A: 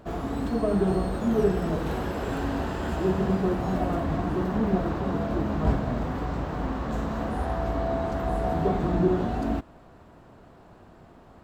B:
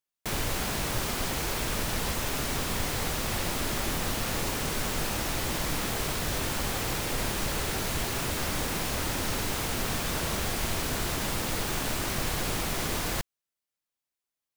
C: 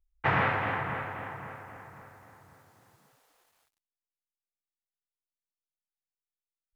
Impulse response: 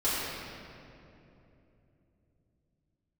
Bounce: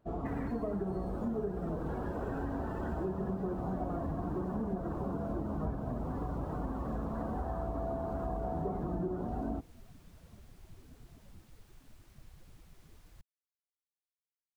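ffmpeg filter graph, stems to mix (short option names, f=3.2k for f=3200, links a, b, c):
-filter_complex "[0:a]volume=-4.5dB[a];[1:a]volume=-18.5dB[b];[2:a]equalizer=f=1.2k:t=o:w=2:g=-9.5,volume=-10dB[c];[a][b][c]amix=inputs=3:normalize=0,afftdn=nr=17:nf=-39,acompressor=threshold=-32dB:ratio=6"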